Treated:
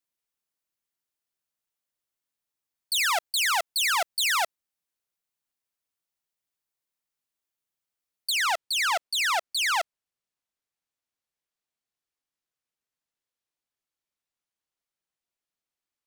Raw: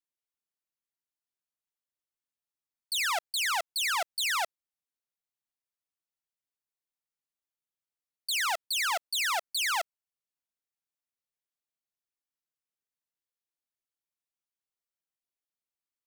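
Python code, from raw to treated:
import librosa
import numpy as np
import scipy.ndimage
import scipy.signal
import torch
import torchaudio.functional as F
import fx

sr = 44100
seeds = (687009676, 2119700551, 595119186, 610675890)

y = fx.high_shelf(x, sr, hz=10000.0, db=fx.steps((0.0, 2.0), (8.3, -8.5)))
y = y * 10.0 ** (4.5 / 20.0)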